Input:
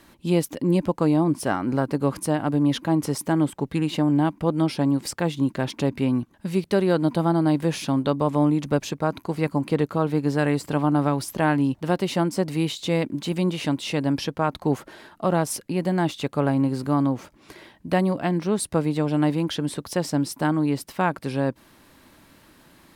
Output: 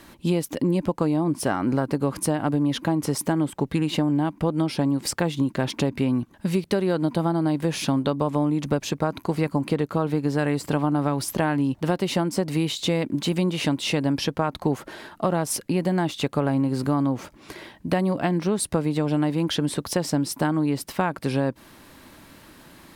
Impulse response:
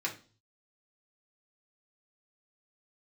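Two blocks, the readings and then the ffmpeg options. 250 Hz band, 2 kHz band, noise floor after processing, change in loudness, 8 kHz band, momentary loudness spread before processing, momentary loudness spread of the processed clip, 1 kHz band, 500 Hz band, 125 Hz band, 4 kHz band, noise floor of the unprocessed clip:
−1.0 dB, −0.5 dB, −52 dBFS, −0.5 dB, +2.5 dB, 5 LU, 3 LU, −1.5 dB, −1.0 dB, −0.5 dB, +2.5 dB, −55 dBFS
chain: -af "acompressor=threshold=-24dB:ratio=6,volume=5dB"

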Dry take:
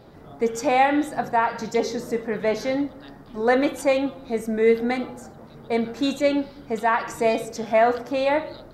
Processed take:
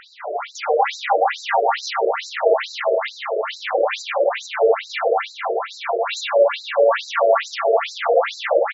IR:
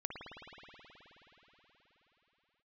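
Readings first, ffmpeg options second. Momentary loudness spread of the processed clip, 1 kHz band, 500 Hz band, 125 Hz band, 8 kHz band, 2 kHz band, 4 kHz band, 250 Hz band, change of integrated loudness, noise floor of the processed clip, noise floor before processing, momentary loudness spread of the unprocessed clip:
7 LU, +3.5 dB, +4.5 dB, below −35 dB, +1.5 dB, +3.5 dB, +7.5 dB, −17.5 dB, +3.0 dB, −41 dBFS, −46 dBFS, 8 LU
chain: -filter_complex "[0:a]bass=frequency=250:gain=-14,treble=frequency=4000:gain=1,asplit=2[link_01][link_02];[link_02]highpass=frequency=720:poles=1,volume=35dB,asoftclip=type=tanh:threshold=-7.5dB[link_03];[link_01][link_03]amix=inputs=2:normalize=0,lowpass=frequency=2100:poles=1,volume=-6dB,aecho=1:1:180|360|540|720|900|1080|1260:0.596|0.31|0.161|0.0838|0.0436|0.0226|0.0118[link_04];[1:a]atrim=start_sample=2205,asetrate=41454,aresample=44100[link_05];[link_04][link_05]afir=irnorm=-1:irlink=0,afftfilt=real='re*between(b*sr/1024,470*pow(5500/470,0.5+0.5*sin(2*PI*2.3*pts/sr))/1.41,470*pow(5500/470,0.5+0.5*sin(2*PI*2.3*pts/sr))*1.41)':imag='im*between(b*sr/1024,470*pow(5500/470,0.5+0.5*sin(2*PI*2.3*pts/sr))/1.41,470*pow(5500/470,0.5+0.5*sin(2*PI*2.3*pts/sr))*1.41)':win_size=1024:overlap=0.75"

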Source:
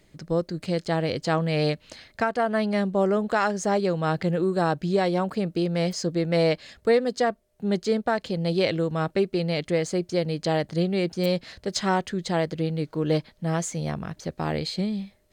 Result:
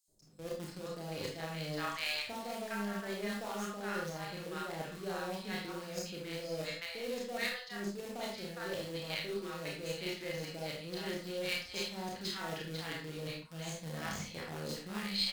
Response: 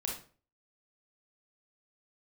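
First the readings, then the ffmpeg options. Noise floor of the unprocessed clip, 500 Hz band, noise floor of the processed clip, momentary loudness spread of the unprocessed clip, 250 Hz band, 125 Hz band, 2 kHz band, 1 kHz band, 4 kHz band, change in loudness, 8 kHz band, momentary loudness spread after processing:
−61 dBFS, −16.0 dB, −49 dBFS, 6 LU, −16.5 dB, −17.0 dB, −8.0 dB, −14.5 dB, −5.0 dB, −13.5 dB, −8.5 dB, 6 LU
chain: -filter_complex "[0:a]acrossover=split=5500[link_01][link_02];[link_02]acompressor=threshold=-50dB:ratio=4:attack=1:release=60[link_03];[link_01][link_03]amix=inputs=2:normalize=0,acrossover=split=850|5800[link_04][link_05][link_06];[link_04]adelay=80[link_07];[link_05]adelay=490[link_08];[link_07][link_08][link_06]amix=inputs=3:normalize=0,asplit=2[link_09][link_10];[link_10]acrusher=bits=5:dc=4:mix=0:aa=0.000001,volume=-9dB[link_11];[link_09][link_11]amix=inputs=2:normalize=0,asplit=2[link_12][link_13];[link_13]adelay=30,volume=-7.5dB[link_14];[link_12][link_14]amix=inputs=2:normalize=0,areverse,acompressor=threshold=-33dB:ratio=8,areverse,tiltshelf=frequency=1100:gain=-6,agate=range=-7dB:threshold=-49dB:ratio=16:detection=peak[link_15];[1:a]atrim=start_sample=2205,afade=type=out:start_time=0.21:duration=0.01,atrim=end_sample=9702,asetrate=43659,aresample=44100[link_16];[link_15][link_16]afir=irnorm=-1:irlink=0,aeval=exprs='0.119*(cos(1*acos(clip(val(0)/0.119,-1,1)))-cos(1*PI/2))+0.00531*(cos(4*acos(clip(val(0)/0.119,-1,1)))-cos(4*PI/2))+0.00266*(cos(7*acos(clip(val(0)/0.119,-1,1)))-cos(7*PI/2))':channel_layout=same,volume=-2dB"

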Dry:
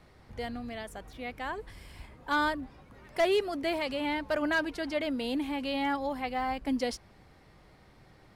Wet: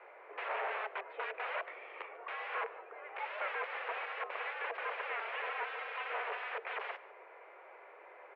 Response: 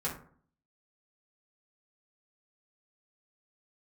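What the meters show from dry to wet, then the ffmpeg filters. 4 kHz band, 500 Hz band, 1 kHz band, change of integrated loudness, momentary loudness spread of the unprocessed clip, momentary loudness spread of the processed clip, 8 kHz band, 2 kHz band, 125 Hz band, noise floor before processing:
−11.5 dB, −11.0 dB, −5.0 dB, −7.5 dB, 15 LU, 17 LU, below −30 dB, −3.5 dB, below −40 dB, −58 dBFS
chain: -filter_complex "[0:a]aeval=exprs='(mod(70.8*val(0)+1,2)-1)/70.8':channel_layout=same,crystalizer=i=0.5:c=0,asplit=2[link_01][link_02];[link_02]aecho=0:1:146:0.106[link_03];[link_01][link_03]amix=inputs=2:normalize=0,highpass=frequency=240:width_type=q:width=0.5412,highpass=frequency=240:width_type=q:width=1.307,lowpass=frequency=2300:width_type=q:width=0.5176,lowpass=frequency=2300:width_type=q:width=0.7071,lowpass=frequency=2300:width_type=q:width=1.932,afreqshift=200,volume=6.5dB"

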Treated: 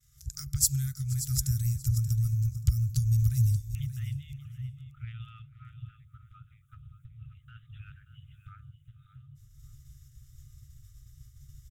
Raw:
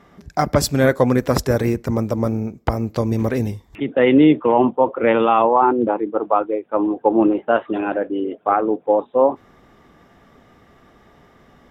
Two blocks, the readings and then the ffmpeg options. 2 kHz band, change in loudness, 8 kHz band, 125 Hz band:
below −25 dB, −11.0 dB, can't be measured, −2.0 dB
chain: -filter_complex "[0:a]acompressor=threshold=-27dB:ratio=4,firequalizer=gain_entry='entry(130,0);entry(340,4);entry(700,-18);entry(1700,-20);entry(3700,-5);entry(6800,13)':delay=0.05:min_phase=1,agate=range=-33dB:threshold=-46dB:ratio=3:detection=peak,asplit=2[link_01][link_02];[link_02]aecho=0:1:478:0.0794[link_03];[link_01][link_03]amix=inputs=2:normalize=0,afftfilt=real='re*(1-between(b*sr/4096,140,1200))':imag='im*(1-between(b*sr/4096,140,1200))':win_size=4096:overlap=0.75,asplit=2[link_04][link_05];[link_05]aecho=0:1:581|1162:0.251|0.0427[link_06];[link_04][link_06]amix=inputs=2:normalize=0,asubboost=boost=4:cutoff=240"

